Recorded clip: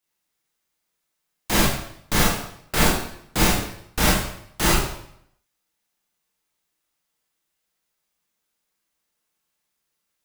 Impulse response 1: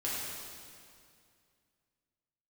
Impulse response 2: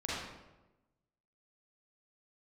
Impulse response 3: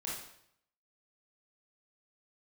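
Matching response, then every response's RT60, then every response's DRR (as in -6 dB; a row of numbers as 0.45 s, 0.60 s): 3; 2.3 s, 1.1 s, 0.70 s; -8.0 dB, -8.0 dB, -6.0 dB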